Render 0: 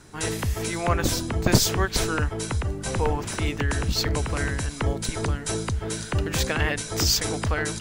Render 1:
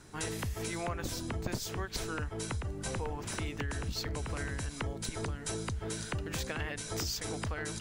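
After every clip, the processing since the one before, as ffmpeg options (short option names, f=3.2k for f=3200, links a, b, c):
-af "acompressor=threshold=-28dB:ratio=6,volume=-5dB"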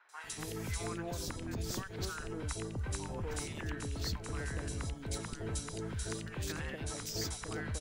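-filter_complex "[0:a]alimiter=level_in=2.5dB:limit=-24dB:level=0:latency=1:release=111,volume=-2.5dB,acrossover=split=780|2600[a][b][c];[c]adelay=90[d];[a]adelay=240[e];[e][b][d]amix=inputs=3:normalize=0,volume=-1dB"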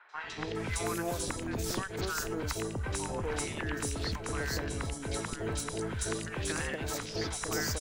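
-filter_complex "[0:a]bass=f=250:g=-6,treble=f=4k:g=-1,acrossover=split=4600[a][b];[b]adelay=460[c];[a][c]amix=inputs=2:normalize=0,aeval=exprs='0.0473*(cos(1*acos(clip(val(0)/0.0473,-1,1)))-cos(1*PI/2))+0.0075*(cos(2*acos(clip(val(0)/0.0473,-1,1)))-cos(2*PI/2))':c=same,volume=7.5dB"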